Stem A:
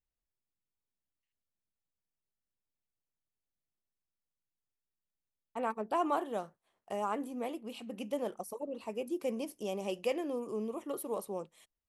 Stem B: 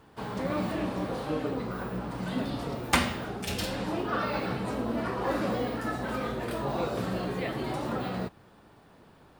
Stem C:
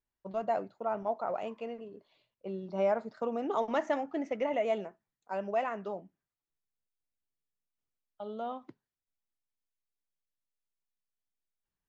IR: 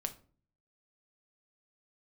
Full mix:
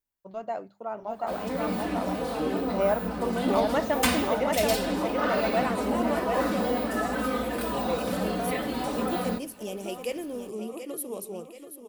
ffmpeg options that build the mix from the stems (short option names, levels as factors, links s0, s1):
-filter_complex "[0:a]agate=range=0.0224:threshold=0.00224:ratio=3:detection=peak,equalizer=f=980:w=1.2:g=-8.5,volume=0.708,asplit=2[s0][s1];[s1]volume=0.316[s2];[1:a]asoftclip=type=tanh:threshold=0.0891,aecho=1:1:4:0.76,adelay=1100,volume=0.562[s3];[2:a]bandreject=f=50:t=h:w=6,bandreject=f=100:t=h:w=6,bandreject=f=150:t=h:w=6,bandreject=f=200:t=h:w=6,volume=0.794,asplit=2[s4][s5];[s5]volume=0.668[s6];[s2][s6]amix=inputs=2:normalize=0,aecho=0:1:732|1464|2196|2928|3660|4392|5124:1|0.48|0.23|0.111|0.0531|0.0255|0.0122[s7];[s0][s3][s4][s7]amix=inputs=4:normalize=0,dynaudnorm=f=290:g=11:m=1.88,highshelf=f=8200:g=10.5"